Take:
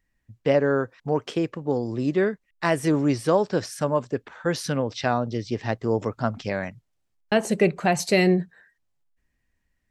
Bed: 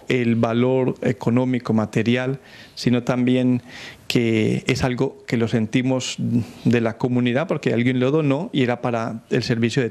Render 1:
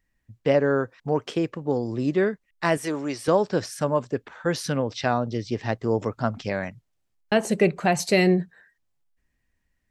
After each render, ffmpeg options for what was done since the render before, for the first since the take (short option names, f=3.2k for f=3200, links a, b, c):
-filter_complex "[0:a]asettb=1/sr,asplit=3[a][b][c];[a]atrim=end=2.774[d];[b]atrim=start=2.77:end=3.28,asetpts=PTS-STARTPTS,afade=t=in:d=0.004:c=qsin,afade=t=out:st=0.506:d=0.004:c=qsin,highpass=f=630:p=1[e];[c]atrim=start=3.276[f];[d][e]acrossfade=d=0.004:c1=hsin:c2=qsin[g];[g][f]acrossfade=d=0.004:c1=qsin:c2=hsin"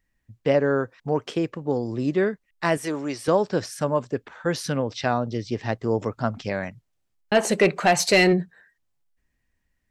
-filter_complex "[0:a]asplit=3[a][b][c];[a]afade=t=out:st=7.34:d=0.02[d];[b]asplit=2[e][f];[f]highpass=f=720:p=1,volume=14dB,asoftclip=type=tanh:threshold=-7.5dB[g];[e][g]amix=inputs=2:normalize=0,lowpass=f=6.5k:p=1,volume=-6dB,afade=t=in:st=7.34:d=0.02,afade=t=out:st=8.32:d=0.02[h];[c]afade=t=in:st=8.32:d=0.02[i];[d][h][i]amix=inputs=3:normalize=0"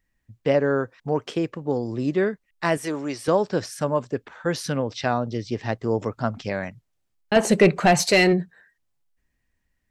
-filter_complex "[0:a]asettb=1/sr,asplit=3[a][b][c];[a]atrim=end=7.364[d];[b]atrim=start=7.36:end=8.03,asetpts=PTS-STARTPTS,afade=t=in:d=0.004:c=qsin,afade=t=out:st=0.666:d=0.004:c=qsin,lowshelf=f=240:g=10.5[e];[c]atrim=start=8.026[f];[d][e]acrossfade=d=0.004:c1=hsin:c2=qsin[g];[g][f]acrossfade=d=0.004:c1=qsin:c2=hsin"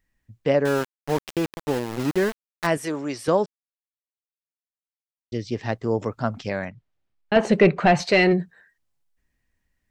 -filter_complex "[0:a]asettb=1/sr,asplit=3[a][b][c];[a]atrim=end=0.654[d];[b]atrim=start=0.65:end=2.67,asetpts=PTS-STARTPTS,afade=t=in:d=0.004:c=qsin,afade=t=out:st=2.016:d=0.004:c=qsin,aeval=exprs='val(0)*gte(abs(val(0)),0.0501)':c=same[e];[c]atrim=start=2.666[f];[d][e]acrossfade=d=0.004:c1=hsin:c2=qsin[g];[g][f]acrossfade=d=0.004:c1=qsin:c2=hsin,asettb=1/sr,asplit=3[h][i][j];[h]atrim=end=6.654[k];[i]atrim=start=6.65:end=8.31,asetpts=PTS-STARTPTS,afade=t=in:d=0.004:c=qsin,afade=t=out:st=1.656:d=0.004:c=qsin,lowpass=3.6k[l];[j]atrim=start=8.306[m];[k][l]acrossfade=d=0.004:c1=hsin:c2=qsin[n];[n][m]acrossfade=d=0.004:c1=qsin:c2=hsin,asplit=3[o][p][q];[o]atrim=end=3.46,asetpts=PTS-STARTPTS,afade=t=out:st=3.456:d=0.004:c=hsin[r];[p]atrim=start=3.46:end=5.32,asetpts=PTS-STARTPTS,volume=0[s];[q]atrim=start=5.32,asetpts=PTS-STARTPTS,afade=t=in:d=0.004:c=hsin[t];[r][s][t]concat=n=3:v=0:a=1"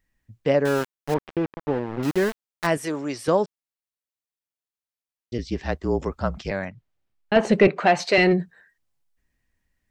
-filter_complex "[0:a]asettb=1/sr,asplit=3[a][b][c];[a]atrim=end=1.144[d];[b]atrim=start=1.14:end=2.03,asetpts=PTS-STARTPTS,afade=t=in:d=0.004:c=qsin,afade=t=out:st=0.886:d=0.004:c=qsin,lowpass=1.8k[e];[c]atrim=start=2.026[f];[d][e]acrossfade=d=0.004:c1=hsin:c2=qsin[g];[g][f]acrossfade=d=0.004:c1=qsin:c2=hsin,asettb=1/sr,asplit=3[h][i][j];[h]atrim=end=5.384[k];[i]atrim=start=5.38:end=6.51,asetpts=PTS-STARTPTS,afade=t=in:d=0.004:c=qsin,afade=t=out:st=1.126:d=0.004:c=qsin,afreqshift=-41[l];[j]atrim=start=6.506[m];[k][l]acrossfade=d=0.004:c1=hsin:c2=qsin[n];[n][m]acrossfade=d=0.004:c1=qsin:c2=hsin,asettb=1/sr,asplit=3[o][p][q];[o]atrim=end=7.674[r];[p]atrim=start=7.67:end=8.18,asetpts=PTS-STARTPTS,afade=t=in:d=0.004:c=qsin,afade=t=out:st=0.506:d=0.004:c=qsin,highpass=280[s];[q]atrim=start=8.176[t];[r][s]acrossfade=d=0.004:c1=hsin:c2=qsin[u];[u][t]acrossfade=d=0.004:c1=qsin:c2=hsin"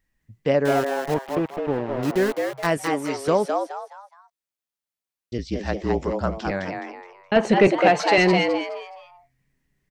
-filter_complex "[0:a]asplit=5[a][b][c][d][e];[b]adelay=210,afreqshift=130,volume=-4.5dB[f];[c]adelay=420,afreqshift=260,volume=-14.1dB[g];[d]adelay=630,afreqshift=390,volume=-23.8dB[h];[e]adelay=840,afreqshift=520,volume=-33.4dB[i];[a][f][g][h][i]amix=inputs=5:normalize=0"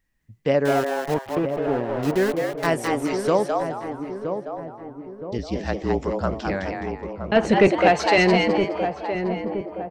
-filter_complex "[0:a]asplit=2[a][b];[b]adelay=969,lowpass=f=900:p=1,volume=-6.5dB,asplit=2[c][d];[d]adelay=969,lowpass=f=900:p=1,volume=0.54,asplit=2[e][f];[f]adelay=969,lowpass=f=900:p=1,volume=0.54,asplit=2[g][h];[h]adelay=969,lowpass=f=900:p=1,volume=0.54,asplit=2[i][j];[j]adelay=969,lowpass=f=900:p=1,volume=0.54,asplit=2[k][l];[l]adelay=969,lowpass=f=900:p=1,volume=0.54,asplit=2[m][n];[n]adelay=969,lowpass=f=900:p=1,volume=0.54[o];[a][c][e][g][i][k][m][o]amix=inputs=8:normalize=0"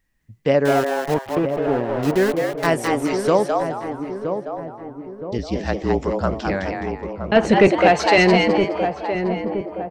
-af "volume=3dB,alimiter=limit=-2dB:level=0:latency=1"